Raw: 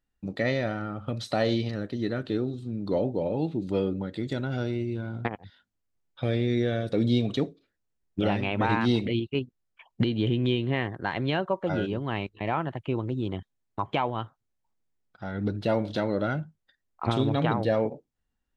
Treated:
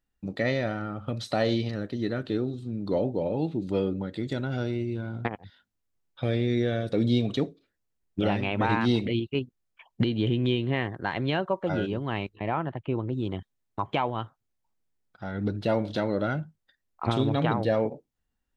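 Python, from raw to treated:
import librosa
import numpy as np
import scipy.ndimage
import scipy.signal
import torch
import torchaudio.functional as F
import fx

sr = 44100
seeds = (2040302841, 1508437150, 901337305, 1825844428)

y = fx.lowpass(x, sr, hz=2300.0, slope=6, at=(12.36, 13.13))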